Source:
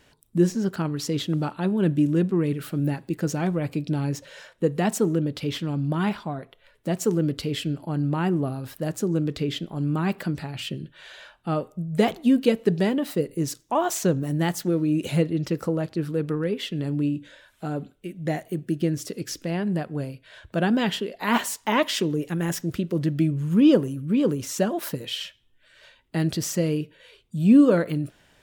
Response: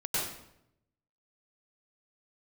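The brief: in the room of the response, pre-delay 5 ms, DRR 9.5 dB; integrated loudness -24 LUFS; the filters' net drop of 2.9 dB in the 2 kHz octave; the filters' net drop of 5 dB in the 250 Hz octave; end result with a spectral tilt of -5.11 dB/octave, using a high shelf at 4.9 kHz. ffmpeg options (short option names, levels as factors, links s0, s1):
-filter_complex "[0:a]equalizer=f=250:t=o:g=-7,equalizer=f=2000:t=o:g=-4.5,highshelf=f=4900:g=5.5,asplit=2[s0][s1];[1:a]atrim=start_sample=2205,adelay=5[s2];[s1][s2]afir=irnorm=-1:irlink=0,volume=0.141[s3];[s0][s3]amix=inputs=2:normalize=0,volume=1.5"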